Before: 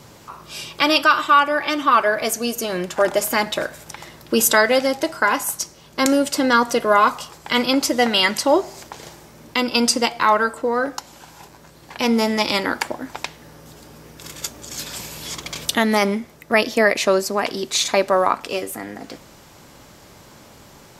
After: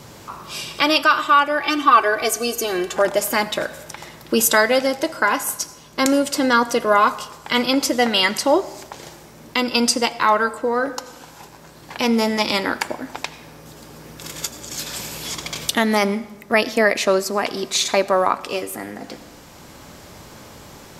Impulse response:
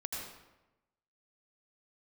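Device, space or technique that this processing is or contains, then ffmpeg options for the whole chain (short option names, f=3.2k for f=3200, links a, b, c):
ducked reverb: -filter_complex "[0:a]asplit=3[a][b][c];[1:a]atrim=start_sample=2205[d];[b][d]afir=irnorm=-1:irlink=0[e];[c]apad=whole_len=925875[f];[e][f]sidechaincompress=threshold=-30dB:ratio=8:attack=24:release=1150,volume=-1dB[g];[a][g]amix=inputs=2:normalize=0,asettb=1/sr,asplit=3[h][i][j];[h]atrim=end=1.634[k];[i]atrim=start=1.63:end=2.97,asetpts=PTS-STARTPTS,afade=t=in:d=0.004:c=qsin,afade=t=out:st=1.336:d=0.004:c=qsin,aecho=1:1:2.6:0.66,atrim=end_sample=59094[l];[j]atrim=start=2.966[m];[k][l]acrossfade=d=0.004:c1=hsin:c2=qsin[n];[n][m]acrossfade=d=0.004:c1=qsin:c2=hsin,volume=-1dB"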